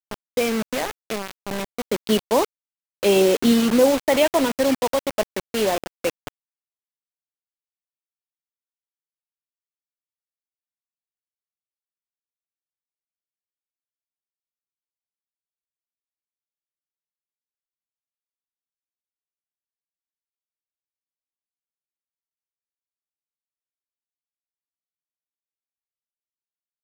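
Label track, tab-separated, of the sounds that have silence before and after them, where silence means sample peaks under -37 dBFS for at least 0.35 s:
3.030000	6.280000	sound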